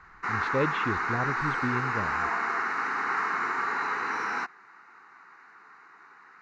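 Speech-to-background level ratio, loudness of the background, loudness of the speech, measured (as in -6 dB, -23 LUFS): -5.0 dB, -28.5 LUFS, -33.5 LUFS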